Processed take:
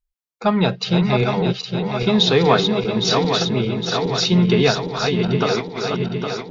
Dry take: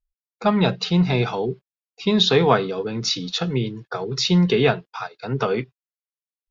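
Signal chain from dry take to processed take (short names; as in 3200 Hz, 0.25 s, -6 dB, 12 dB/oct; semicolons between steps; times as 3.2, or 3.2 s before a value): regenerating reverse delay 0.406 s, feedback 76%, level -5 dB; 4.63–5.33 added noise brown -56 dBFS; gain +1 dB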